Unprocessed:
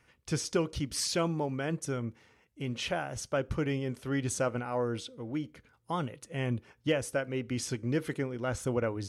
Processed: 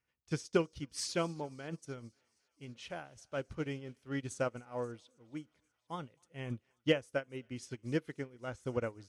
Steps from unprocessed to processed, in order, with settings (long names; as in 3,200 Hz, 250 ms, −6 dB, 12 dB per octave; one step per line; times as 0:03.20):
low-pass filter 9,200 Hz 12 dB per octave
high-shelf EQ 4,000 Hz +4 dB
0:02.69–0:03.60: transient designer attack −3 dB, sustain +3 dB
on a send: feedback echo with a high-pass in the loop 267 ms, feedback 82%, high-pass 690 Hz, level −21 dB
on the sum: expander for the loud parts 2.5 to 1, over −39 dBFS
level +1 dB